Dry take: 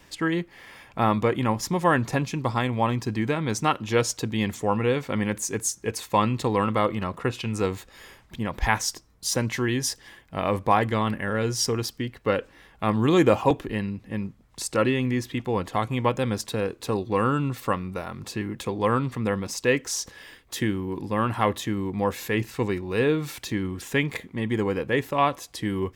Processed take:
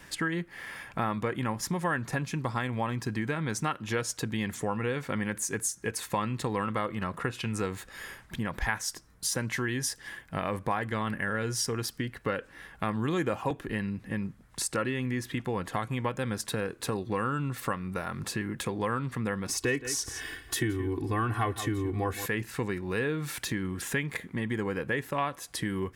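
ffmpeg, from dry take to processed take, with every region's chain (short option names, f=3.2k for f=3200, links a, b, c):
-filter_complex "[0:a]asettb=1/sr,asplit=3[a][b][c];[a]atrim=end=19.484[d];[b]atrim=start=19.48:end=22.26,asetpts=PTS-STARTPTS,afade=t=in:d=0.004:c=qsin,afade=t=out:st=2.776:d=0.004:c=qsin,equalizer=f=99:w=0.41:g=7.5,aecho=1:1:2.7:0.94,atrim=end_sample=122598,aecho=1:1:169:0.178,atrim=end_sample=122598[e];[c]atrim=start=22.256[f];[d][e]acrossfade=d=0.004:c1=hsin:c2=qsin[g];[g][f]acrossfade=d=0.004:c1=qsin:c2=hsin,equalizer=f=160:t=o:w=0.67:g=4,equalizer=f=1.6k:t=o:w=0.67:g=8,equalizer=f=10k:t=o:w=0.67:g=7,acompressor=threshold=-30dB:ratio=3"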